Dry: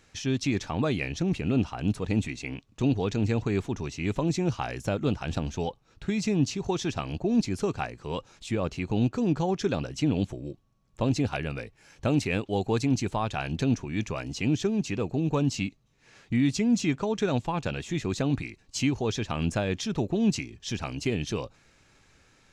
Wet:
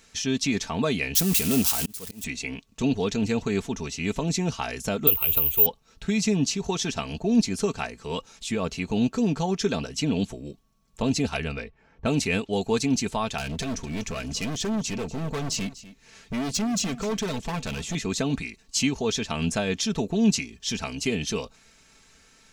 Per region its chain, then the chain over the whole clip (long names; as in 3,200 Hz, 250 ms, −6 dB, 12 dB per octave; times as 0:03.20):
0:01.15–0:02.24: spike at every zero crossing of −21.5 dBFS + volume swells 691 ms
0:05.07–0:05.66: parametric band 2,800 Hz +3 dB 0.44 octaves + phaser with its sweep stopped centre 1,100 Hz, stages 8 + bad sample-rate conversion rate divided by 3×, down none, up zero stuff
0:11.02–0:12.53: low-pass that shuts in the quiet parts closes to 850 Hz, open at −24 dBFS + parametric band 64 Hz +5 dB 1.4 octaves
0:13.38–0:17.95: low-shelf EQ 130 Hz +8 dB + hard clipping −28 dBFS + single-tap delay 245 ms −16.5 dB
whole clip: high-shelf EQ 3,400 Hz +9.5 dB; comb filter 4.5 ms, depth 56%